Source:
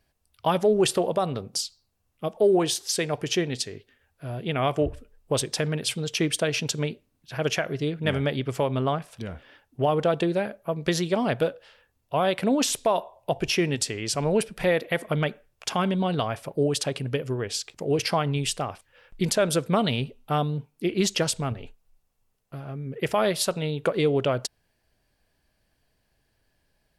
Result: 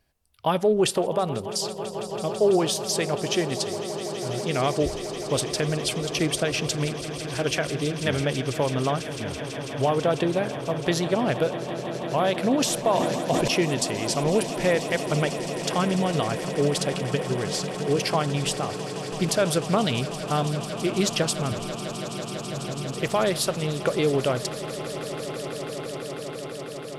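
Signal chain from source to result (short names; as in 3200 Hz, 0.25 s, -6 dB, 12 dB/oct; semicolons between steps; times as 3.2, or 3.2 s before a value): swelling echo 0.165 s, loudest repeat 8, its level -16.5 dB; 12.9–13.48 sustainer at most 27 dB/s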